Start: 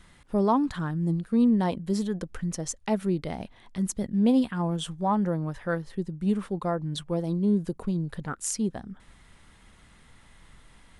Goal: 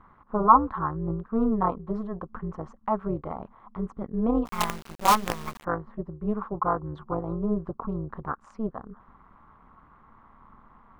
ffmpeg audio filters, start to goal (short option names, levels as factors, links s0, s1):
-filter_complex "[0:a]lowpass=f=1100:t=q:w=9.2,tremolo=f=220:d=0.824,asplit=3[s0][s1][s2];[s0]afade=t=out:st=4.45:d=0.02[s3];[s1]acrusher=bits=4:dc=4:mix=0:aa=0.000001,afade=t=in:st=4.45:d=0.02,afade=t=out:st=5.63:d=0.02[s4];[s2]afade=t=in:st=5.63:d=0.02[s5];[s3][s4][s5]amix=inputs=3:normalize=0"